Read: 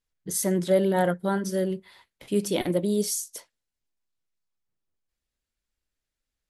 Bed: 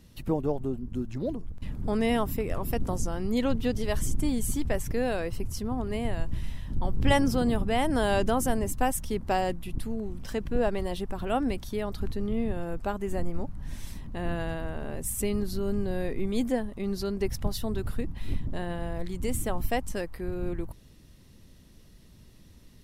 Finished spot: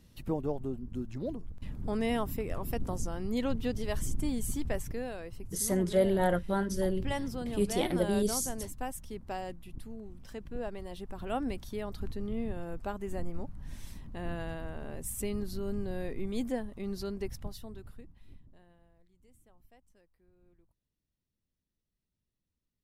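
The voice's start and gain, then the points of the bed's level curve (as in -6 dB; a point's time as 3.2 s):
5.25 s, -4.5 dB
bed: 4.79 s -5 dB
5.13 s -11.5 dB
10.84 s -11.5 dB
11.33 s -6 dB
17.1 s -6 dB
19.05 s -34 dB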